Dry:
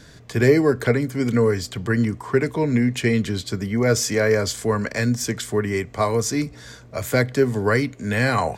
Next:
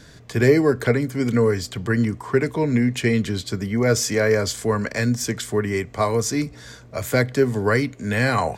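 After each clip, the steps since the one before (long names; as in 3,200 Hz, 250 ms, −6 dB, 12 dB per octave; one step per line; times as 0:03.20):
no processing that can be heard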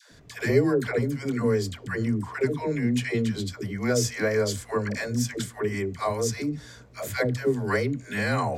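all-pass dispersion lows, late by 120 ms, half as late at 520 Hz
level −5.5 dB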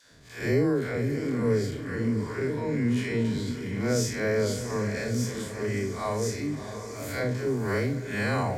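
spectrum smeared in time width 111 ms
feedback delay with all-pass diffusion 650 ms, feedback 52%, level −9.5 dB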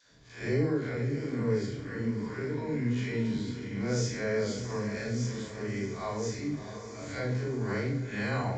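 convolution reverb RT60 0.50 s, pre-delay 10 ms, DRR 4.5 dB
downsampling to 16,000 Hz
level −6 dB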